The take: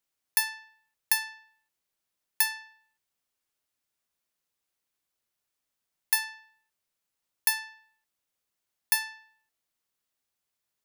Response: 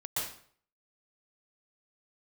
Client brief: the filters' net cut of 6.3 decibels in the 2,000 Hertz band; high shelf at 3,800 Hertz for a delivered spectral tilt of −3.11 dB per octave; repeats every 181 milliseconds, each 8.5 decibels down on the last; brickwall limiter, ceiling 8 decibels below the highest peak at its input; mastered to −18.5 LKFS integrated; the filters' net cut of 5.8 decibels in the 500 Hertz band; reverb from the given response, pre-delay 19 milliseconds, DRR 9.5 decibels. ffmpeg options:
-filter_complex "[0:a]equalizer=frequency=500:width_type=o:gain=-8,equalizer=frequency=2000:width_type=o:gain=-5,highshelf=frequency=3800:gain=-8.5,alimiter=level_in=2dB:limit=-24dB:level=0:latency=1,volume=-2dB,aecho=1:1:181|362|543|724:0.376|0.143|0.0543|0.0206,asplit=2[link_01][link_02];[1:a]atrim=start_sample=2205,adelay=19[link_03];[link_02][link_03]afir=irnorm=-1:irlink=0,volume=-14dB[link_04];[link_01][link_04]amix=inputs=2:normalize=0,volume=22.5dB"

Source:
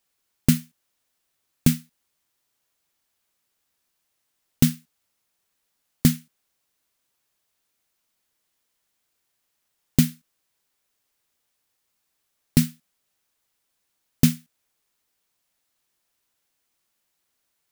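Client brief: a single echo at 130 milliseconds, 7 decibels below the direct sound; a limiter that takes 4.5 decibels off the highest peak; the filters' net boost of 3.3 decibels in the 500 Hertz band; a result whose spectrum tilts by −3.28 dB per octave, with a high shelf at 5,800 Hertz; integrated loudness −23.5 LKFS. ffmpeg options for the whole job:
ffmpeg -i in.wav -af "equalizer=frequency=500:width_type=o:gain=4.5,highshelf=frequency=5800:gain=9,alimiter=limit=-2.5dB:level=0:latency=1,aecho=1:1:130:0.447,volume=-0.5dB" out.wav

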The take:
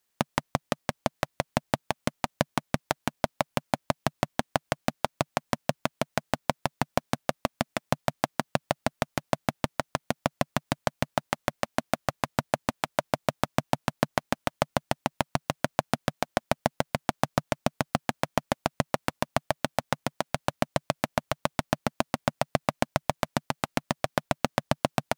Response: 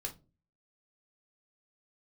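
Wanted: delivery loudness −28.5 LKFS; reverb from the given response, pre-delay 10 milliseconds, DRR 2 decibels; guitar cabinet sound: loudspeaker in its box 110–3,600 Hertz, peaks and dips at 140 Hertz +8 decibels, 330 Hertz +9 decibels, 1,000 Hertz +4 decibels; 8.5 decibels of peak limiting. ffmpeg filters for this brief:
-filter_complex "[0:a]alimiter=limit=-11.5dB:level=0:latency=1,asplit=2[link_01][link_02];[1:a]atrim=start_sample=2205,adelay=10[link_03];[link_02][link_03]afir=irnorm=-1:irlink=0,volume=-1dB[link_04];[link_01][link_04]amix=inputs=2:normalize=0,highpass=110,equalizer=frequency=140:width_type=q:width=4:gain=8,equalizer=frequency=330:width_type=q:width=4:gain=9,equalizer=frequency=1000:width_type=q:width=4:gain=4,lowpass=frequency=3600:width=0.5412,lowpass=frequency=3600:width=1.3066,volume=5dB"

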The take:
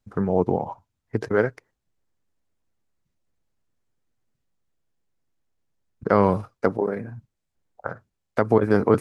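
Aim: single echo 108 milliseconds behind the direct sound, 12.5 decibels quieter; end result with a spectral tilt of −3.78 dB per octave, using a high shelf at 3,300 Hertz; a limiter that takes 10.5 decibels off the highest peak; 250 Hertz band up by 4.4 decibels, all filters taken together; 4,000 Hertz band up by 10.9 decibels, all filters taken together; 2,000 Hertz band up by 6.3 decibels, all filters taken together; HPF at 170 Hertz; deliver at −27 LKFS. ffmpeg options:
ffmpeg -i in.wav -af "highpass=170,equalizer=frequency=250:width_type=o:gain=7.5,equalizer=frequency=2000:width_type=o:gain=6,highshelf=frequency=3300:gain=4.5,equalizer=frequency=4000:width_type=o:gain=9,alimiter=limit=-11.5dB:level=0:latency=1,aecho=1:1:108:0.237,volume=-1.5dB" out.wav

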